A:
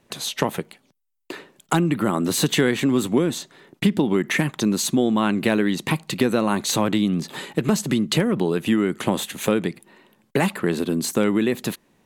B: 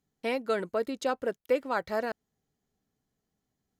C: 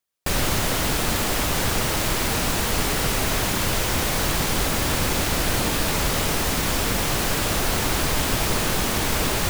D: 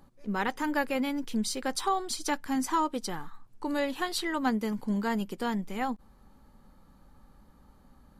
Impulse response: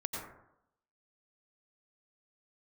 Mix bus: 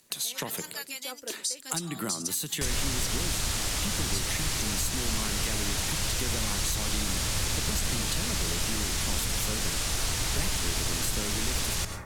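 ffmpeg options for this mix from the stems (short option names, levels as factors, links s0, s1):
-filter_complex "[0:a]volume=0.282,asplit=3[s0][s1][s2];[s1]volume=0.15[s3];[1:a]flanger=delay=2.8:depth=7.2:regen=60:speed=1.2:shape=triangular,volume=0.422[s4];[2:a]lowpass=7400,adelay=2350,volume=0.376,asplit=2[s5][s6];[s6]volume=0.596[s7];[3:a]bandpass=f=6300:t=q:w=1.2:csg=0,volume=0.944[s8];[s2]apad=whole_len=171727[s9];[s4][s9]sidechaincompress=threshold=0.0112:ratio=8:attack=16:release=844[s10];[4:a]atrim=start_sample=2205[s11];[s3][s7]amix=inputs=2:normalize=0[s12];[s12][s11]afir=irnorm=-1:irlink=0[s13];[s0][s10][s5][s8][s13]amix=inputs=5:normalize=0,crystalizer=i=5.5:c=0,acrossover=split=120[s14][s15];[s15]acompressor=threshold=0.0355:ratio=6[s16];[s14][s16]amix=inputs=2:normalize=0"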